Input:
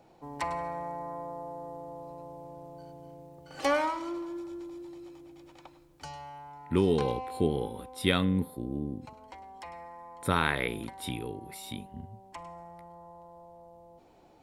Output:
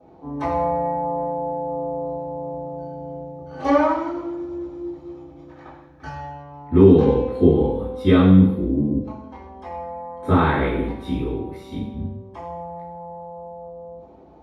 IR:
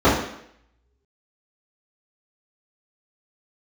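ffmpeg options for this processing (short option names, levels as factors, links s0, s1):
-filter_complex "[0:a]asettb=1/sr,asplit=3[s0][s1][s2];[s0]atrim=end=5.494[s3];[s1]atrim=start=5.49:end=6.19,asetpts=PTS-STARTPTS,afade=t=in:d=0.004:c=qsin,afade=t=out:st=0.696:d=0.004:c=qsin,equalizer=f=1700:w=3:g=14.5[s4];[s2]atrim=start=6.186[s5];[s3][s4]acrossfade=d=0.004:c1=hsin:c2=qsin[s6];[s6][s5]acrossfade=d=0.004:c1=qsin:c2=hsin[s7];[1:a]atrim=start_sample=2205,asetrate=42336,aresample=44100[s8];[s7][s8]afir=irnorm=-1:irlink=0,volume=0.133"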